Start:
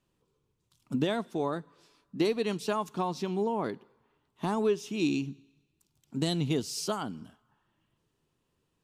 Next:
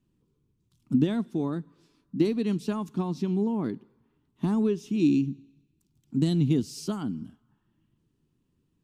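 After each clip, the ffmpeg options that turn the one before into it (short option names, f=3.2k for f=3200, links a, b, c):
-af "lowshelf=f=390:t=q:w=1.5:g=10.5,volume=-5dB"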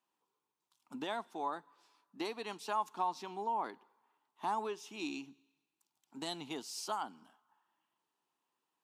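-af "highpass=f=840:t=q:w=3.4,volume=-2.5dB"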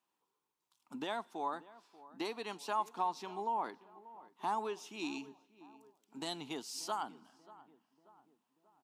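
-filter_complex "[0:a]asplit=2[a][b];[b]adelay=586,lowpass=f=1.4k:p=1,volume=-18dB,asplit=2[c][d];[d]adelay=586,lowpass=f=1.4k:p=1,volume=0.53,asplit=2[e][f];[f]adelay=586,lowpass=f=1.4k:p=1,volume=0.53,asplit=2[g][h];[h]adelay=586,lowpass=f=1.4k:p=1,volume=0.53[i];[a][c][e][g][i]amix=inputs=5:normalize=0"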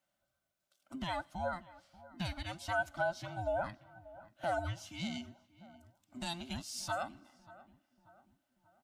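-af "afftfilt=real='real(if(between(b,1,1008),(2*floor((b-1)/24)+1)*24-b,b),0)':imag='imag(if(between(b,1,1008),(2*floor((b-1)/24)+1)*24-b,b),0)*if(between(b,1,1008),-1,1)':win_size=2048:overlap=0.75,volume=1dB"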